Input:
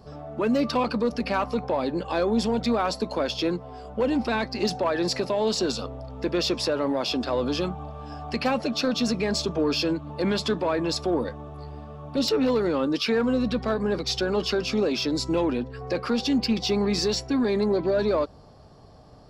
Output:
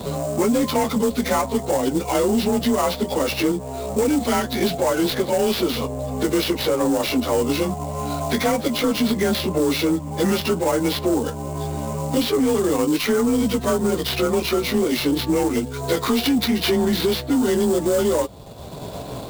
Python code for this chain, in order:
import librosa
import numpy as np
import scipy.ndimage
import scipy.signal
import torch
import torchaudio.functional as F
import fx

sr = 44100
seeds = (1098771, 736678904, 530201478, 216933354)

p1 = fx.partial_stretch(x, sr, pct=92)
p2 = fx.high_shelf(p1, sr, hz=3400.0, db=9.5, at=(15.55, 16.89))
p3 = fx.level_steps(p2, sr, step_db=9)
p4 = p2 + F.gain(torch.from_numpy(p3), 0.5).numpy()
p5 = fx.sample_hold(p4, sr, seeds[0], rate_hz=8100.0, jitter_pct=20)
p6 = 10.0 ** (-14.0 / 20.0) * np.tanh(p5 / 10.0 ** (-14.0 / 20.0))
p7 = fx.band_squash(p6, sr, depth_pct=70)
y = F.gain(torch.from_numpy(p7), 2.5).numpy()